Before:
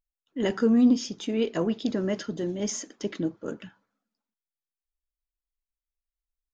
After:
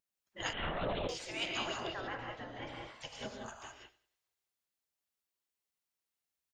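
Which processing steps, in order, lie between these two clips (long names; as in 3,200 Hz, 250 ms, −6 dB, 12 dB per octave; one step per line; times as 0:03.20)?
gate on every frequency bin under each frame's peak −20 dB weak
0:01.80–0:02.95: low-pass filter 1,900 Hz 12 dB per octave
on a send: repeating echo 96 ms, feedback 36%, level −19 dB
on the sum: reverb whose tail is shaped and stops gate 220 ms rising, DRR 0 dB
0:00.53–0:01.09: linear-prediction vocoder at 8 kHz whisper
level +2.5 dB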